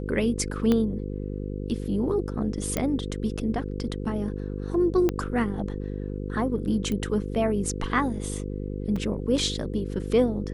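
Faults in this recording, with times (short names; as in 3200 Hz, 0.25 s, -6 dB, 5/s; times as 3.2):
buzz 50 Hz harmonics 10 -32 dBFS
0.72 pop -12 dBFS
2.77 pop -11 dBFS
5.09 pop -12 dBFS
6.92 pop -18 dBFS
8.96 gap 4 ms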